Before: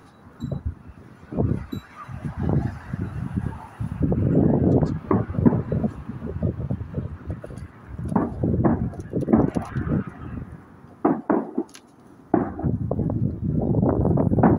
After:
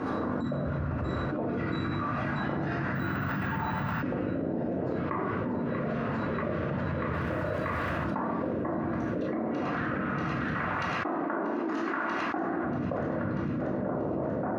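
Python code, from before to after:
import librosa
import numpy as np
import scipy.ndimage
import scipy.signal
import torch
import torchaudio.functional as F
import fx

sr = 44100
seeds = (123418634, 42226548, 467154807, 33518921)

y = fx.env_lowpass_down(x, sr, base_hz=950.0, full_db=-15.0)
y = fx.notch(y, sr, hz=820.0, q=12.0)
y = fx.env_lowpass(y, sr, base_hz=470.0, full_db=-14.5)
y = np.diff(y, prepend=0.0)
y = fx.dmg_crackle(y, sr, seeds[0], per_s=200.0, level_db=-76.0, at=(7.11, 7.89), fade=0.02)
y = fx.echo_wet_highpass(y, sr, ms=637, feedback_pct=82, hz=1500.0, wet_db=-7.0)
y = fx.room_shoebox(y, sr, seeds[1], volume_m3=470.0, walls='mixed', distance_m=2.3)
y = fx.resample_bad(y, sr, factor=2, down='filtered', up='hold', at=(2.95, 4.02))
y = fx.env_flatten(y, sr, amount_pct=100)
y = y * librosa.db_to_amplitude(4.0)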